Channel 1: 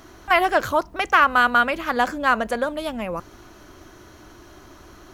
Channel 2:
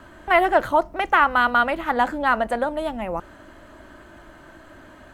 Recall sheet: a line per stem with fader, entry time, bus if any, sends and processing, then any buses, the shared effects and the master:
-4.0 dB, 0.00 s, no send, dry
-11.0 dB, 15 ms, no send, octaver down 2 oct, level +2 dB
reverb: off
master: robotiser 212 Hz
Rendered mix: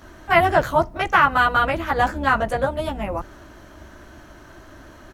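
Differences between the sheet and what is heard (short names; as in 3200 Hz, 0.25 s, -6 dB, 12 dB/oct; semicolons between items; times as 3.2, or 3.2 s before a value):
stem 2 -11.0 dB -> -1.0 dB; master: missing robotiser 212 Hz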